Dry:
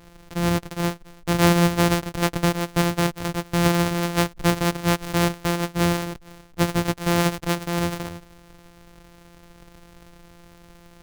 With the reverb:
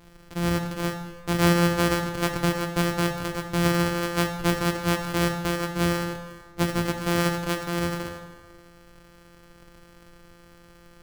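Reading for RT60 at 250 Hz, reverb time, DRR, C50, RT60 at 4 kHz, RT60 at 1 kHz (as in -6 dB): 1.6 s, 1.6 s, 5.0 dB, 7.5 dB, 1.1 s, 1.5 s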